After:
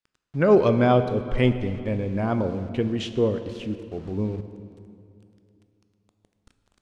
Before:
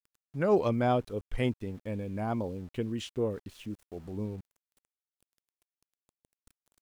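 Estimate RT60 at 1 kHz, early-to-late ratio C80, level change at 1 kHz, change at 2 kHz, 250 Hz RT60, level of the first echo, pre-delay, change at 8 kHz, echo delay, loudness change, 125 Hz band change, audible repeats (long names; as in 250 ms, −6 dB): 2.4 s, 11.0 dB, +6.0 dB, +9.0 dB, 2.9 s, no echo audible, 13 ms, can't be measured, no echo audible, +8.5 dB, +9.5 dB, no echo audible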